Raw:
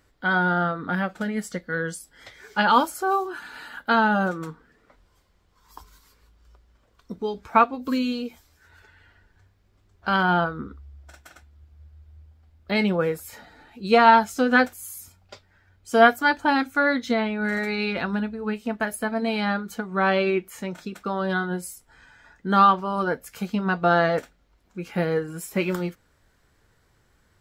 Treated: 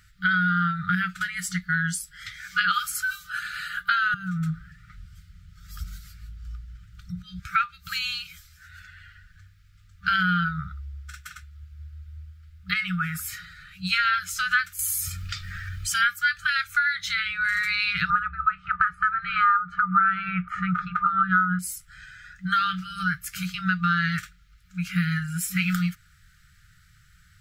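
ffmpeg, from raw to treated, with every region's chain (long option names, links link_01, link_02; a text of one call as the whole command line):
ffmpeg -i in.wav -filter_complex "[0:a]asettb=1/sr,asplit=3[link_01][link_02][link_03];[link_01]atrim=end=4.144[link_04];[link_02]atrim=start=4.14:end=7.4,asetpts=PTS-STARTPTS,afade=type=in:duration=0.004:curve=qsin,afade=type=out:start_time=3.256:duration=0.004:curve=qsin,equalizer=frequency=100:width=0.3:gain=12.5,acompressor=threshold=-29dB:ratio=5:attack=3.2:release=140:knee=1:detection=peak[link_05];[link_03]atrim=start=7.396[link_06];[link_04][link_05]acrossfade=duration=0.004:curve1=hsin:curve2=qsin[link_07];[link_07][link_06]acrossfade=duration=0.004:curve1=qsin:curve2=hsin,asettb=1/sr,asplit=3[link_08][link_09][link_10];[link_08]atrim=end=12.734[link_11];[link_09]atrim=start=12.73:end=13.27,asetpts=PTS-STARTPTS,afade=type=in:duration=0.004:curve=qsin,afade=type=out:start_time=0.536:duration=0.004:curve=qsin,equalizer=frequency=1300:width=1.1:gain=7.5,bandreject=frequency=4100:width=8,acompressor=threshold=-25dB:ratio=4:attack=3.2:release=140:knee=1:detection=peak[link_12];[link_10]atrim=start=13.266[link_13];[link_11][link_12]acrossfade=duration=0.004:curve1=hsin:curve2=qsin[link_14];[link_14][link_13]acrossfade=duration=0.004:curve1=qsin:curve2=hsin,asettb=1/sr,asplit=3[link_15][link_16][link_17];[link_15]atrim=end=14.794[link_18];[link_16]atrim=start=14.79:end=16.04,asetpts=PTS-STARTPTS,afade=type=in:duration=0.004:curve=qsin,afade=type=out:start_time=1.246:duration=0.004:curve=qsin,aecho=1:1:1.7:0.36,atrim=end_sample=55125,acompressor=mode=upward:threshold=-26dB:ratio=2.5:attack=3.2:release=140:knee=2.83:detection=peak[link_19];[link_17]atrim=start=16.036[link_20];[link_18][link_19]acrossfade=duration=0.004:curve1=hsin:curve2=qsin[link_21];[link_21][link_20]acrossfade=duration=0.004:curve1=qsin:curve2=hsin,asettb=1/sr,asplit=3[link_22][link_23][link_24];[link_22]atrim=end=18.104[link_25];[link_23]atrim=start=18.1:end=21.59,asetpts=PTS-STARTPTS,afade=type=in:duration=0.004:curve=qsin,afade=type=out:start_time=3.486:duration=0.004:curve=qsin,acontrast=71,lowpass=frequency=1200:width_type=q:width=8.8[link_26];[link_24]atrim=start=21.586[link_27];[link_25][link_26]acrossfade=duration=0.004:curve1=hsin:curve2=qsin[link_28];[link_28][link_27]acrossfade=duration=0.004:curve1=qsin:curve2=hsin,afftfilt=real='re*(1-between(b*sr/4096,190,1200))':imag='im*(1-between(b*sr/4096,190,1200))':win_size=4096:overlap=0.75,acompressor=threshold=-28dB:ratio=4,volume=7.5dB" out.wav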